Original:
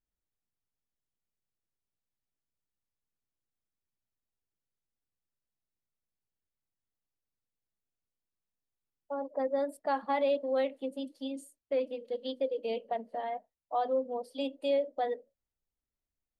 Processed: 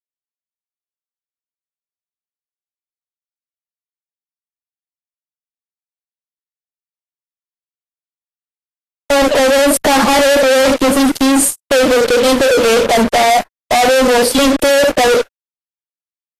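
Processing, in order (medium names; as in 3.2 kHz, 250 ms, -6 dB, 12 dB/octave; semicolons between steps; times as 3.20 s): in parallel at -1 dB: peak limiter -31 dBFS, peak gain reduction 11.5 dB; on the sum: fuzz box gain 55 dB, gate -54 dBFS; trim +4 dB; Vorbis 32 kbps 44.1 kHz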